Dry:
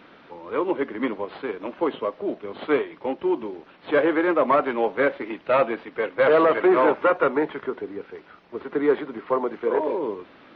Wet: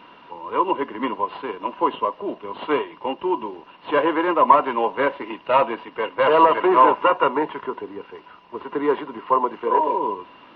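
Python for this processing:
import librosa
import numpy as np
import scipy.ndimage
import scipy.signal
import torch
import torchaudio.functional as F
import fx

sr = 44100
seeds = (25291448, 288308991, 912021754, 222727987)

y = fx.small_body(x, sr, hz=(990.0, 2800.0), ring_ms=40, db=18)
y = y * librosa.db_to_amplitude(-1.0)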